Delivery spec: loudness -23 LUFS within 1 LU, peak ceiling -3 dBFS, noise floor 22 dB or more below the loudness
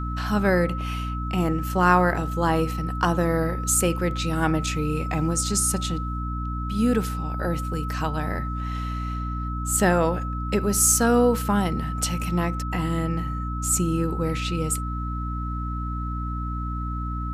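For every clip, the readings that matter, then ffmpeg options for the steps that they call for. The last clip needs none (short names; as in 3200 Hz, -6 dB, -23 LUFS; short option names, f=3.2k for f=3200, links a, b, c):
hum 60 Hz; harmonics up to 300 Hz; hum level -27 dBFS; steady tone 1300 Hz; tone level -33 dBFS; loudness -24.5 LUFS; peak -5.5 dBFS; loudness target -23.0 LUFS
-> -af "bandreject=f=60:t=h:w=4,bandreject=f=120:t=h:w=4,bandreject=f=180:t=h:w=4,bandreject=f=240:t=h:w=4,bandreject=f=300:t=h:w=4"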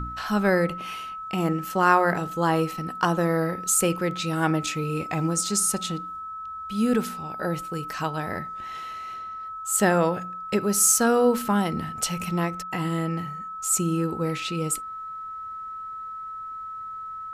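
hum none; steady tone 1300 Hz; tone level -33 dBFS
-> -af "bandreject=f=1.3k:w=30"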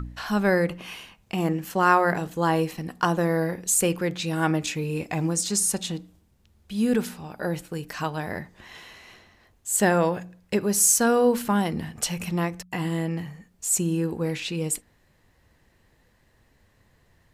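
steady tone none; loudness -24.5 LUFS; peak -5.5 dBFS; loudness target -23.0 LUFS
-> -af "volume=1.5dB"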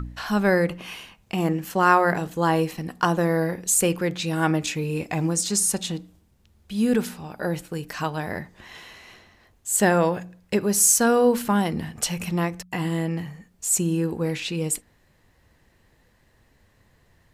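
loudness -23.0 LUFS; peak -4.0 dBFS; noise floor -62 dBFS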